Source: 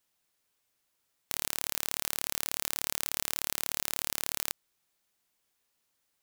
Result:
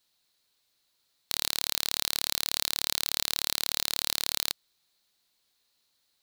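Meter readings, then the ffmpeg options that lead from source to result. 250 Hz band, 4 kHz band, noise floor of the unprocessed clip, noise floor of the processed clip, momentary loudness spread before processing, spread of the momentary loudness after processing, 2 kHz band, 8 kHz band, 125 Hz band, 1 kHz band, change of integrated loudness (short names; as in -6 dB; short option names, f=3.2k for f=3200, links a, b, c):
+1.0 dB, +9.5 dB, -78 dBFS, -74 dBFS, 3 LU, 3 LU, +2.0 dB, +2.0 dB, +1.0 dB, +1.0 dB, +4.0 dB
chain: -af "equalizer=f=4.1k:t=o:w=0.49:g=13.5,volume=1dB"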